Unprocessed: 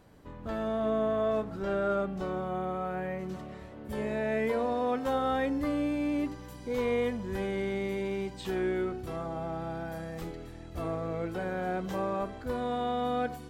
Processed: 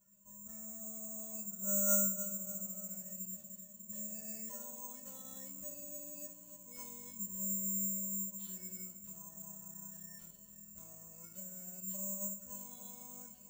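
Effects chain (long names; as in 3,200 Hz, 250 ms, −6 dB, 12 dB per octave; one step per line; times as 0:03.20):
low-shelf EQ 110 Hz +11 dB
notch filter 2,300 Hz, Q 7.9
tuned comb filter 200 Hz, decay 0.32 s, harmonics odd, mix 100%
feedback echo with a low-pass in the loop 297 ms, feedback 71%, low-pass 940 Hz, level −10.5 dB
bad sample-rate conversion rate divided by 6×, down none, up zero stuff
level −5.5 dB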